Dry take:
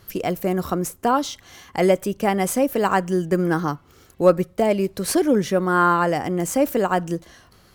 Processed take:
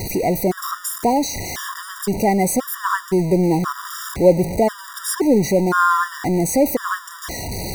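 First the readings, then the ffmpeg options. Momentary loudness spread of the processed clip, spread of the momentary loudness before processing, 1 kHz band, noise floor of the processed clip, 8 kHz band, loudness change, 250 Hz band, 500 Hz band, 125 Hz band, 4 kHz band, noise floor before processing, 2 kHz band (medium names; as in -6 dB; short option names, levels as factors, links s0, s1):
11 LU, 8 LU, +1.5 dB, -37 dBFS, +5.5 dB, +1.5 dB, +2.5 dB, +1.0 dB, +3.0 dB, +3.0 dB, -54 dBFS, +2.0 dB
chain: -af "aeval=exprs='val(0)+0.5*0.0944*sgn(val(0))':c=same,equalizer=f=2900:w=2.8:g=-10.5,afftfilt=real='re*gt(sin(2*PI*0.96*pts/sr)*(1-2*mod(floor(b*sr/1024/960),2)),0)':imag='im*gt(sin(2*PI*0.96*pts/sr)*(1-2*mod(floor(b*sr/1024/960),2)),0)':win_size=1024:overlap=0.75,volume=1.19"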